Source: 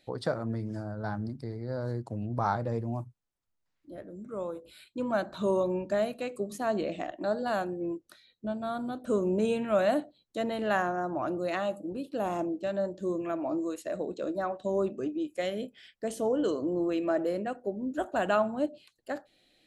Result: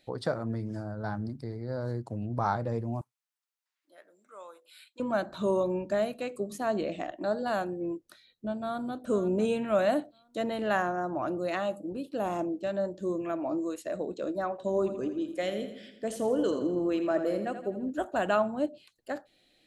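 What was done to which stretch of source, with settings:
3.01–5.00 s: high-pass 1.1 kHz
8.60–9.06 s: echo throw 500 ms, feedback 35%, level -13.5 dB
14.50–17.90 s: two-band feedback delay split 340 Hz, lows 125 ms, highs 83 ms, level -10 dB

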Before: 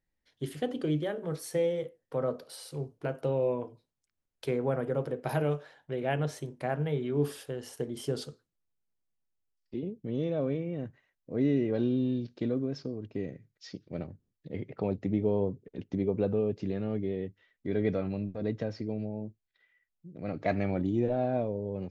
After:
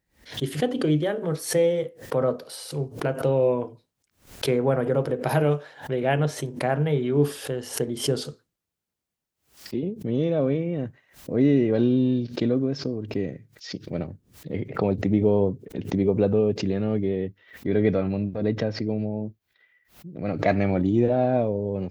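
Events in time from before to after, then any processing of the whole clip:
17.08–20.26 s: peaking EQ 8.2 kHz -7.5 dB 1 oct
whole clip: high-pass 41 Hz; swell ahead of each attack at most 150 dB/s; trim +7.5 dB

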